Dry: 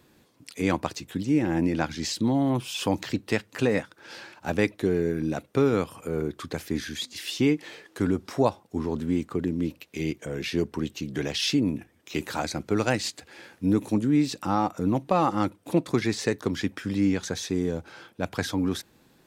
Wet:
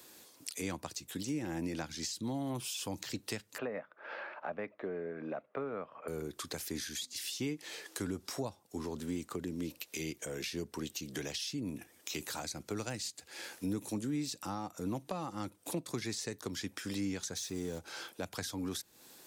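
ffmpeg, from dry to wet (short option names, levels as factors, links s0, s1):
-filter_complex "[0:a]asettb=1/sr,asplit=3[s0][s1][s2];[s0]atrim=end=3.584[s3];[s1]atrim=start=3.58:end=6.08,asetpts=PTS-STARTPTS,afade=t=in:d=0.004:c=qsin,afade=t=out:st=2.496:d=0.004:c=qsin,highpass=240,equalizer=f=320:t=q:w=4:g=-6,equalizer=f=620:t=q:w=4:g=10,equalizer=f=1200:t=q:w=4:g=6,lowpass=f=2200:w=0.5412,lowpass=f=2200:w=1.3066[s4];[s2]atrim=start=6.076[s5];[s3][s4]acrossfade=d=0.004:c1=hsin:c2=qsin[s6];[s6][s5]acrossfade=d=0.004:c1=qsin:c2=hsin,asettb=1/sr,asplit=3[s7][s8][s9];[s7]atrim=end=17.374[s10];[s8]atrim=start=17.37:end=17.79,asetpts=PTS-STARTPTS,afade=t=in:d=0.004:c=qsin,afade=t=out:st=0.416:d=0.004:c=qsin,aeval=exprs='val(0)+0.5*0.0075*sgn(val(0))':c=same[s11];[s9]atrim=start=17.786[s12];[s10][s11]acrossfade=d=0.004:c1=hsin:c2=qsin[s13];[s13][s12]acrossfade=d=0.004:c1=qsin:c2=hsin,bass=f=250:g=-14,treble=f=4000:g=12,acrossover=split=180[s14][s15];[s15]acompressor=threshold=0.01:ratio=8[s16];[s14][s16]amix=inputs=2:normalize=0,volume=1.19"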